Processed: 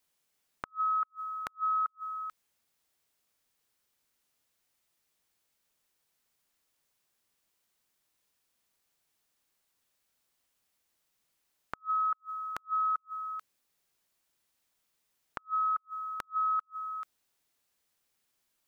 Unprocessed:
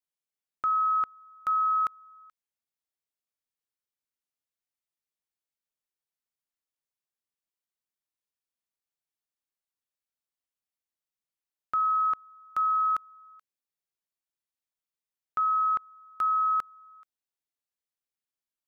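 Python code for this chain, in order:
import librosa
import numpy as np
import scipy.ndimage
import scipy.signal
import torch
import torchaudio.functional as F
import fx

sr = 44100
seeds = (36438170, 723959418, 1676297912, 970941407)

y = fx.over_compress(x, sr, threshold_db=-31.0, ratio=-0.5)
y = fx.gate_flip(y, sr, shuts_db=-29.0, range_db=-39)
y = F.gain(torch.from_numpy(y), 6.0).numpy()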